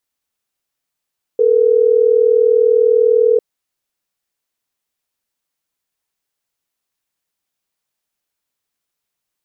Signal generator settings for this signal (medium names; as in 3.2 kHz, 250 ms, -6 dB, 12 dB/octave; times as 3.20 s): call progress tone ringback tone, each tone -11.5 dBFS